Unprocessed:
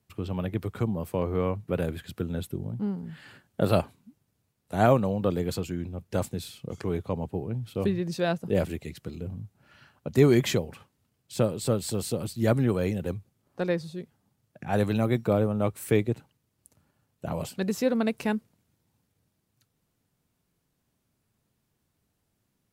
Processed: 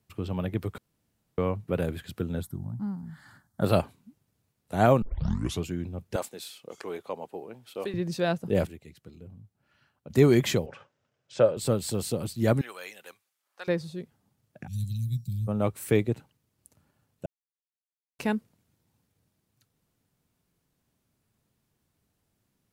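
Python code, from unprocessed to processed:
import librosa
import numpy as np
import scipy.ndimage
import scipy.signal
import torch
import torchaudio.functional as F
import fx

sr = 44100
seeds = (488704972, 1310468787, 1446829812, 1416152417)

y = fx.fixed_phaser(x, sr, hz=1100.0, stages=4, at=(2.41, 3.62), fade=0.02)
y = fx.highpass(y, sr, hz=480.0, slope=12, at=(6.16, 7.94))
y = fx.cabinet(y, sr, low_hz=150.0, low_slope=12, high_hz=6100.0, hz=(200.0, 290.0, 570.0, 1500.0, 4300.0), db=(-10, -7, 9, 6, -7), at=(10.66, 11.57))
y = fx.highpass(y, sr, hz=1300.0, slope=12, at=(12.61, 13.68))
y = fx.ellip_bandstop(y, sr, low_hz=140.0, high_hz=4700.0, order=3, stop_db=70, at=(14.66, 15.47), fade=0.02)
y = fx.edit(y, sr, fx.room_tone_fill(start_s=0.78, length_s=0.6),
    fx.tape_start(start_s=5.02, length_s=0.63),
    fx.clip_gain(start_s=8.67, length_s=1.43, db=-11.0),
    fx.silence(start_s=17.26, length_s=0.93), tone=tone)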